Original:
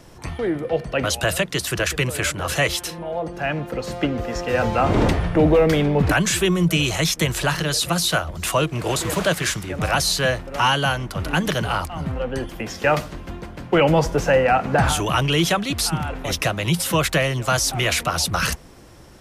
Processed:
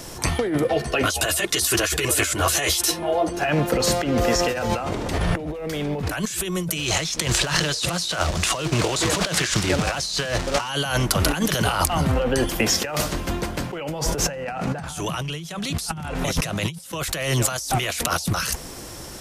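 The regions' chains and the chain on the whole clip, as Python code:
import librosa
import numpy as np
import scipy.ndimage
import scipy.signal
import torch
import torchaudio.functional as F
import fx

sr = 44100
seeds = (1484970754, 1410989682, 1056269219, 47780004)

y = fx.chain(x, sr, fx.comb(ms=2.8, depth=0.4),
    fx.ensemble(), at=(0.67, 3.49))
y = fx.chain(y, sr, fx.quant_companded(bits=4),
    fx.lowpass(hz=5800.0, slope=12), at=(6.78, 10.69))
y = fx.chain(y, sr, fx.lowpass(hz=12000.0, slope=12),
    fx.peak_eq(hz=160.0, db=13.5, octaves=0.32),
    fx.sustainer(db_per_s=38.0), at=(14.27, 16.92))
y = fx.bass_treble(y, sr, bass_db=-3, treble_db=9)
y = fx.over_compress(y, sr, threshold_db=-27.0, ratio=-1.0)
y = y * librosa.db_to_amplitude(2.0)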